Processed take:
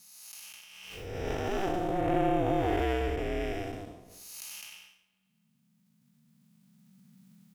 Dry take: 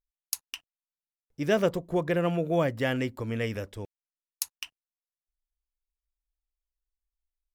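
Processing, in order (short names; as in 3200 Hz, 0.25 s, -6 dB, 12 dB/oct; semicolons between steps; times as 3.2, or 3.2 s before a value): time blur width 0.354 s; recorder AGC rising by 6.4 dB/s; comb 3.8 ms, depth 63%; spring tank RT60 1.9 s, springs 48 ms, chirp 50 ms, DRR 19 dB; ring modulator 190 Hz; backwards sustainer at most 35 dB/s; gain +3.5 dB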